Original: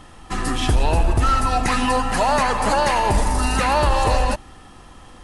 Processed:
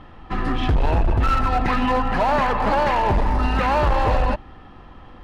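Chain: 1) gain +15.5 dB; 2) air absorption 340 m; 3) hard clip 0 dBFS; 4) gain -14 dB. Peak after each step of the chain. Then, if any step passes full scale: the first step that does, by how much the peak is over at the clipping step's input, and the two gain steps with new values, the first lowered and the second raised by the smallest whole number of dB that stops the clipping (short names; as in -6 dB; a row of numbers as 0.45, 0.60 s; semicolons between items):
+5.5, +5.5, 0.0, -14.0 dBFS; step 1, 5.5 dB; step 1 +9.5 dB, step 4 -8 dB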